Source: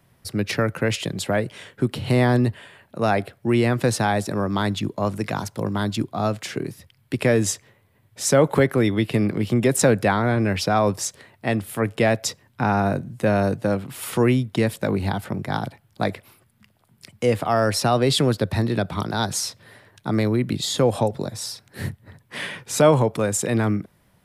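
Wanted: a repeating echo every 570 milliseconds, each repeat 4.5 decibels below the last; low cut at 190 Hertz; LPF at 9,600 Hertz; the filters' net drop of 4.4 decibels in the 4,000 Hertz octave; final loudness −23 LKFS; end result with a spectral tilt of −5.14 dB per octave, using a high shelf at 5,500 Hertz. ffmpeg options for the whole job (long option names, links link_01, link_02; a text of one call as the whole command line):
ffmpeg -i in.wav -af "highpass=190,lowpass=9600,equalizer=frequency=4000:width_type=o:gain=-3.5,highshelf=frequency=5500:gain=-4.5,aecho=1:1:570|1140|1710|2280|2850|3420|3990|4560|5130:0.596|0.357|0.214|0.129|0.0772|0.0463|0.0278|0.0167|0.01,volume=-0.5dB" out.wav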